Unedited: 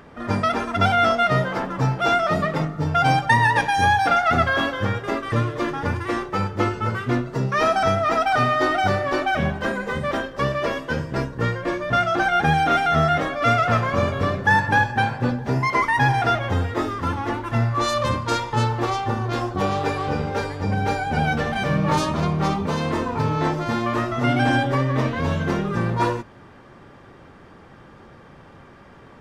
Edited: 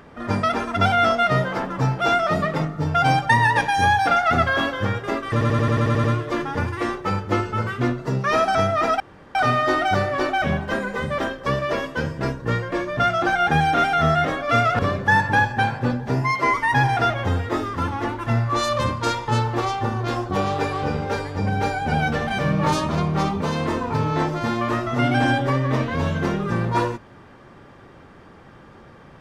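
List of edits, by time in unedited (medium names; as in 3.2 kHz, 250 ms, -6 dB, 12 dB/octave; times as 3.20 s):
5.32 s: stutter 0.09 s, 9 plays
8.28 s: insert room tone 0.35 s
13.72–14.18 s: delete
15.61–15.89 s: stretch 1.5×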